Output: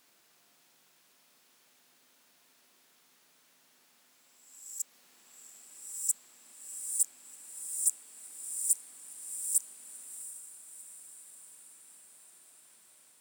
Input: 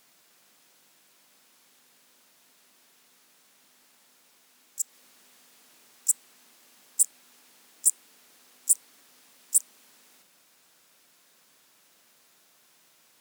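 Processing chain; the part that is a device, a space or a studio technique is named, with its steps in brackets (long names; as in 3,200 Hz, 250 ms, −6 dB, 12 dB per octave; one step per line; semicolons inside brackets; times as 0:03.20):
feedback delay with all-pass diffusion 715 ms, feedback 62%, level −13 dB
reverse reverb (reversed playback; convolution reverb RT60 2.5 s, pre-delay 27 ms, DRR 2 dB; reversed playback)
level −6 dB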